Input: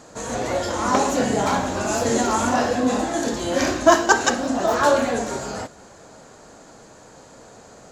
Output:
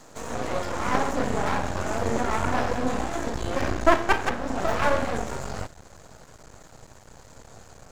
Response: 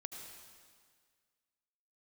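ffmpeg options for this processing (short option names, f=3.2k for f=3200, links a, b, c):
-filter_complex "[0:a]asubboost=boost=6:cutoff=110,acrossover=split=220|1300|1900[a][b][c][d];[d]acompressor=threshold=-39dB:ratio=6[e];[a][b][c][e]amix=inputs=4:normalize=0,aeval=exprs='max(val(0),0)':c=same"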